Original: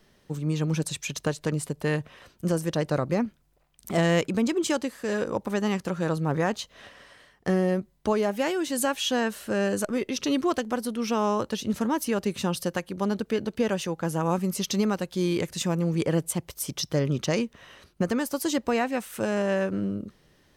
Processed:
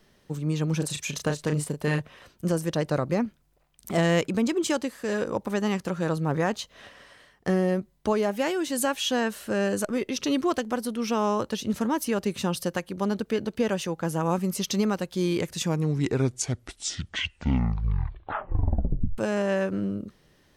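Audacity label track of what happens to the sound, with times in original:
0.770000	2.000000	double-tracking delay 34 ms −6 dB
15.500000	15.500000	tape stop 3.68 s

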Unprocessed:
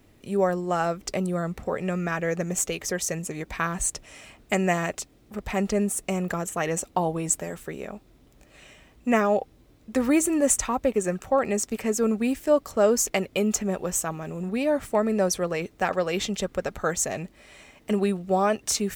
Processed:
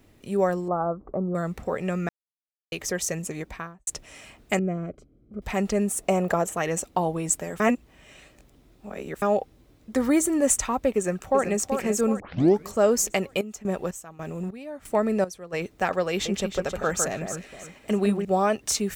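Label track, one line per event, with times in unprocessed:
0.680000	1.350000	elliptic low-pass filter 1,200 Hz, stop band 80 dB
2.090000	2.720000	silence
3.350000	3.870000	fade out and dull
4.590000	5.420000	moving average over 49 samples
6.000000	6.560000	parametric band 660 Hz +9.5 dB 1.5 octaves
7.600000	9.220000	reverse
9.910000	10.390000	notch filter 2,600 Hz, Q 6.1
10.960000	11.620000	delay throw 380 ms, feedback 50%, level −7 dB
12.200000	12.200000	tape start 0.48 s
13.360000	15.520000	square-wave tremolo 2.2 Hz → 1.1 Hz
16.100000	18.250000	delay that swaps between a low-pass and a high-pass 156 ms, split 2,000 Hz, feedback 56%, level −5 dB

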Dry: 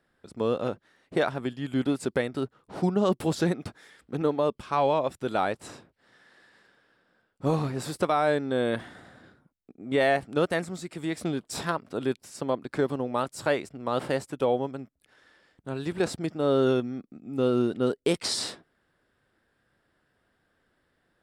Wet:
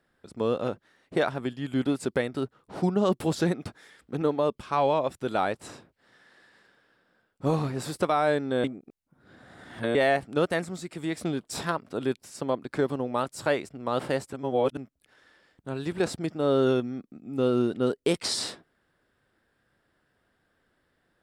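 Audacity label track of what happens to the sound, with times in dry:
8.640000	9.950000	reverse
14.330000	14.770000	reverse

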